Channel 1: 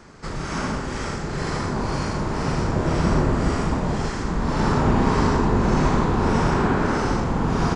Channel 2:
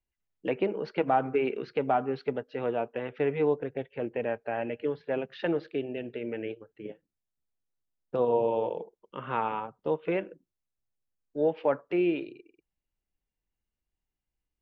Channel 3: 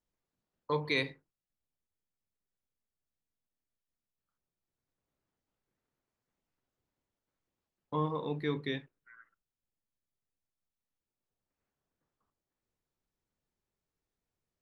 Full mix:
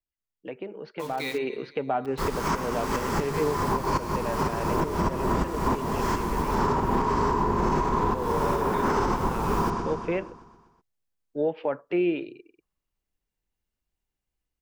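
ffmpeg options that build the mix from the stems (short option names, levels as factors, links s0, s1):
-filter_complex "[0:a]equalizer=f=125:t=o:w=0.33:g=-5,equalizer=f=400:t=o:w=0.33:g=7,equalizer=f=1000:t=o:w=0.33:g=12,equalizer=f=4000:t=o:w=0.33:g=-3,adelay=1950,volume=1.19,asplit=2[s0][s1];[s1]volume=0.1[s2];[1:a]alimiter=limit=0.112:level=0:latency=1:release=211,volume=0.422,asplit=2[s3][s4];[2:a]lowshelf=f=450:g=-3.5,acontrast=35,adelay=300,volume=0.211,asplit=2[s5][s6];[s6]volume=0.237[s7];[s4]apad=whole_len=427889[s8];[s0][s8]sidechaincompress=threshold=0.00224:ratio=10:attack=11:release=158[s9];[s9][s5]amix=inputs=2:normalize=0,acrusher=bits=7:mix=0:aa=0.000001,acompressor=threshold=0.112:ratio=6,volume=1[s10];[s2][s7]amix=inputs=2:normalize=0,aecho=0:1:124|248|372|496|620|744|868|992|1116:1|0.59|0.348|0.205|0.121|0.0715|0.0422|0.0249|0.0147[s11];[s3][s10][s11]amix=inputs=3:normalize=0,dynaudnorm=f=120:g=21:m=3.16,alimiter=limit=0.178:level=0:latency=1:release=324"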